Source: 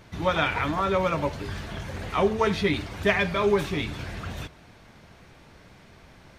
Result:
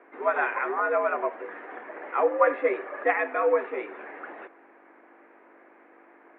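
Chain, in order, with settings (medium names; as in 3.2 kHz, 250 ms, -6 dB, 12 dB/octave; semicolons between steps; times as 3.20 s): 2.32–3.03 s: small resonant body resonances 490/1100/1600 Hz, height 9 dB -> 13 dB; hum 50 Hz, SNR 16 dB; mistuned SSB +88 Hz 270–2000 Hz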